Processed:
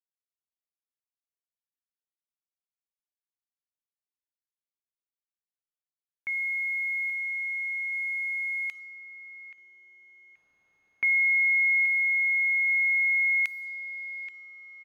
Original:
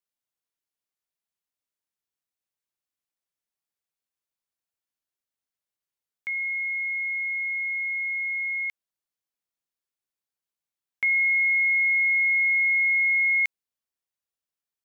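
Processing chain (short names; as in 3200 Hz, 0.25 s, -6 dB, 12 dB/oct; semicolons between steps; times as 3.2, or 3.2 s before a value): feedback echo 0.828 s, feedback 37%, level -13 dB; dynamic EQ 1800 Hz, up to -4 dB, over -41 dBFS, Q 4.4; bit-crush 10-bit; low-pass opened by the level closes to 1700 Hz, open at -27.5 dBFS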